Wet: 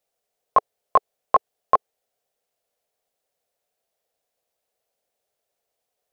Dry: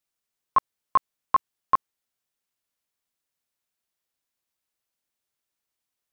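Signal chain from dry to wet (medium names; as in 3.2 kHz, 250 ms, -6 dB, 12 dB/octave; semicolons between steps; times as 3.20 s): high-order bell 570 Hz +14 dB 1.1 oct; trim +2.5 dB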